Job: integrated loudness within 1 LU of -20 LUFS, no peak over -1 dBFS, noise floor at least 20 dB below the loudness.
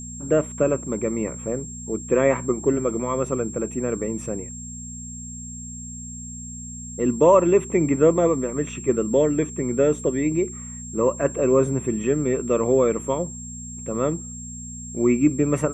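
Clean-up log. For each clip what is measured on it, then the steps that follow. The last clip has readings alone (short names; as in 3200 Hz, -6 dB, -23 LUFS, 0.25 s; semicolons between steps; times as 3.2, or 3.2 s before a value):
hum 60 Hz; harmonics up to 240 Hz; hum level -36 dBFS; steady tone 7500 Hz; tone level -36 dBFS; loudness -22.5 LUFS; peak -4.5 dBFS; loudness target -20.0 LUFS
-> de-hum 60 Hz, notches 4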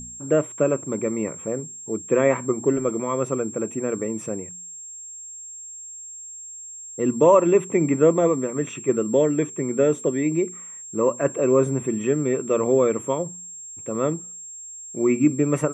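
hum none; steady tone 7500 Hz; tone level -36 dBFS
-> notch 7500 Hz, Q 30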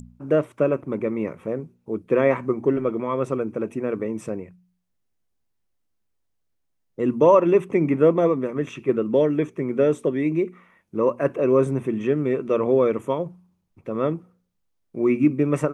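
steady tone none; loudness -22.5 LUFS; peak -5.0 dBFS; loudness target -20.0 LUFS
-> gain +2.5 dB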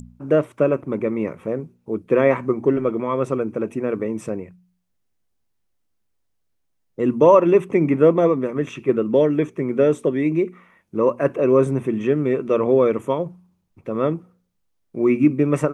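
loudness -20.0 LUFS; peak -2.5 dBFS; noise floor -70 dBFS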